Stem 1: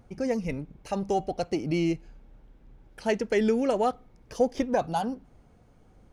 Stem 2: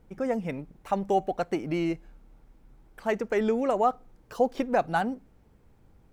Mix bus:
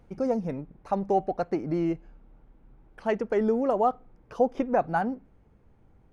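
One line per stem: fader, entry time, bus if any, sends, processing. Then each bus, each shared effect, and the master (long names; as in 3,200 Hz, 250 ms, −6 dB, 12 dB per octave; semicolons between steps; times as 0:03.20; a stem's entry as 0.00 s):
−5.5 dB, 0.00 s, no send, parametric band 2,400 Hz +6 dB 1.3 octaves; automatic ducking −10 dB, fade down 0.60 s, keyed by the second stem
−0.5 dB, 0.00 s, no send, Bessel low-pass filter 2,000 Hz, order 4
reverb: not used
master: no processing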